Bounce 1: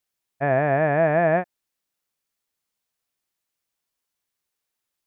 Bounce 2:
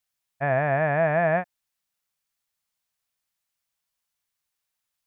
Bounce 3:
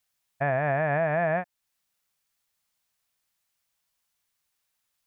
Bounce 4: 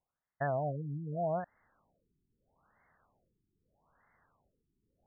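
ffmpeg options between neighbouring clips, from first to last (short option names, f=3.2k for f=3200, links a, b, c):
-af "equalizer=f=350:t=o:w=1.1:g=-10"
-af "alimiter=limit=-20dB:level=0:latency=1:release=408,volume=4dB"
-af "areverse,acompressor=mode=upward:threshold=-32dB:ratio=2.5,areverse,afftfilt=real='re*lt(b*sr/1024,400*pow(2200/400,0.5+0.5*sin(2*PI*0.79*pts/sr)))':imag='im*lt(b*sr/1024,400*pow(2200/400,0.5+0.5*sin(2*PI*0.79*pts/sr)))':win_size=1024:overlap=0.75,volume=-6.5dB"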